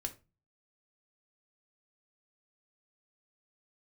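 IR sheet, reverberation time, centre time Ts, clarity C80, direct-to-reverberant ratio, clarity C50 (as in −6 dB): 0.30 s, 6 ms, 22.5 dB, 4.5 dB, 15.5 dB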